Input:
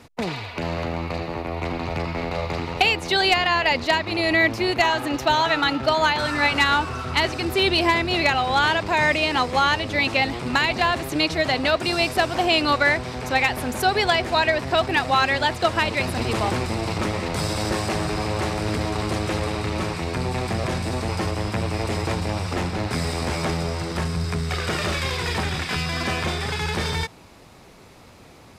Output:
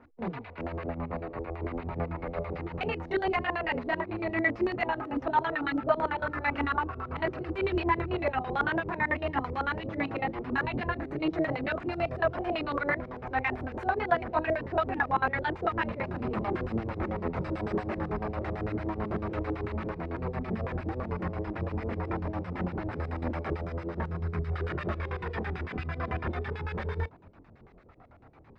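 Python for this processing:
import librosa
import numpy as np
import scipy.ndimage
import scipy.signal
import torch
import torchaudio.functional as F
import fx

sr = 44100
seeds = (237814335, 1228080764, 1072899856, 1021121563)

y = fx.harmonic_tremolo(x, sr, hz=8.0, depth_pct=70, crossover_hz=1700.0)
y = fx.chorus_voices(y, sr, voices=4, hz=0.36, base_ms=25, depth_ms=3.2, mix_pct=55)
y = fx.filter_lfo_lowpass(y, sr, shape='square', hz=9.0, low_hz=410.0, high_hz=1600.0, q=1.4)
y = y * librosa.db_to_amplitude(-2.0)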